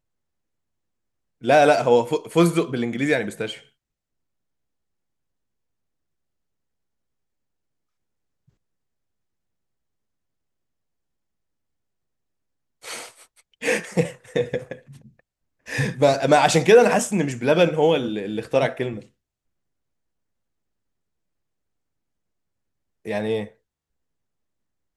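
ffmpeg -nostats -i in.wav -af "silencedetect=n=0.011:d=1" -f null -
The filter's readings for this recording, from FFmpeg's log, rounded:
silence_start: 0.00
silence_end: 1.42 | silence_duration: 1.42
silence_start: 3.59
silence_end: 12.83 | silence_duration: 9.24
silence_start: 19.03
silence_end: 23.06 | silence_duration: 4.03
silence_start: 23.48
silence_end: 24.96 | silence_duration: 1.48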